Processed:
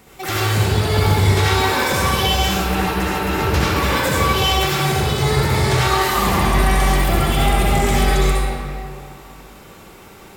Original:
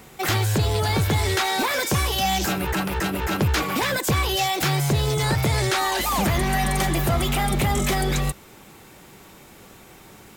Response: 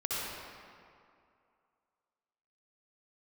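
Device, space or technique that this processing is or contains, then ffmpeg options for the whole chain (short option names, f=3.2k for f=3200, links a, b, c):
stairwell: -filter_complex "[1:a]atrim=start_sample=2205[a];[0:a][a]afir=irnorm=-1:irlink=0,volume=-1dB"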